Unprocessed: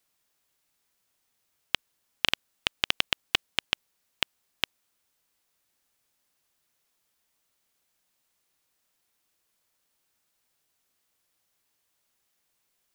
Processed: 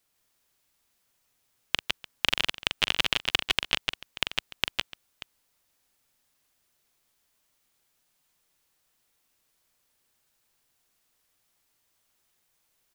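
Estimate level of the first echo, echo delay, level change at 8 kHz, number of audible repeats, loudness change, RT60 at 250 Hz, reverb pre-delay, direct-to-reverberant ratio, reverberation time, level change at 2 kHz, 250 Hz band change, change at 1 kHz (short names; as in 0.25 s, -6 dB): -8.0 dB, 42 ms, +2.5 dB, 4, +2.0 dB, none, none, none, none, +2.5 dB, +3.0 dB, +2.5 dB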